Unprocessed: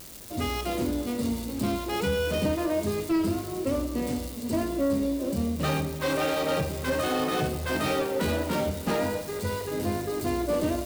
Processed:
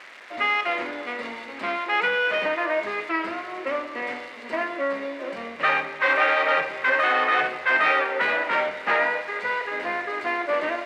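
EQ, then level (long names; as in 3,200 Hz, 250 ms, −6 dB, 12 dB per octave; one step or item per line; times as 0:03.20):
high-pass filter 800 Hz 12 dB per octave
low-pass with resonance 2,000 Hz, resonance Q 2.8
+8.0 dB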